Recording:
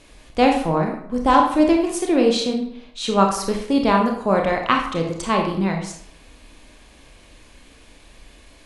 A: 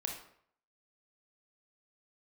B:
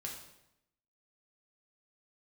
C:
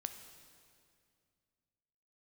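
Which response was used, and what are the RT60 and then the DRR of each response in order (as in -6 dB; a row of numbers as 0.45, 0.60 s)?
A; 0.65, 0.85, 2.3 s; 1.0, -1.5, 7.5 dB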